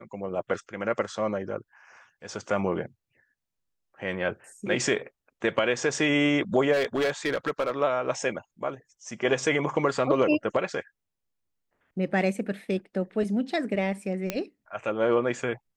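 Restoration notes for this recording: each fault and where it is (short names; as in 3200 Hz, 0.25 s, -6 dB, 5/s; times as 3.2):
6.72–7.72 clipped -21 dBFS
14.3 pop -12 dBFS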